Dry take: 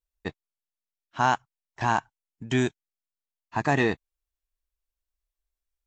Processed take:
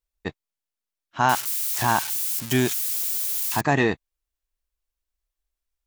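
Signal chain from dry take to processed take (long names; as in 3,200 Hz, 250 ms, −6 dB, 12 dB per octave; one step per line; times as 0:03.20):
0:01.29–0:03.61: spike at every zero crossing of −19 dBFS
level +2.5 dB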